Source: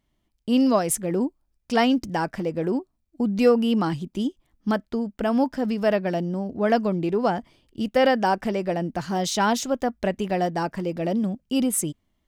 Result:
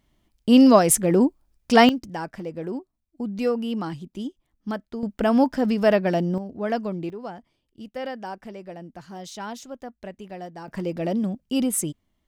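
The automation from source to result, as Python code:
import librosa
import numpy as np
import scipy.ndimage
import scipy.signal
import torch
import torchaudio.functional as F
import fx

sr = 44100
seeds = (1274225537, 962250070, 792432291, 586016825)

y = fx.gain(x, sr, db=fx.steps((0.0, 6.0), (1.89, -6.0), (5.03, 3.0), (6.38, -5.0), (7.1, -13.0), (10.68, -0.5)))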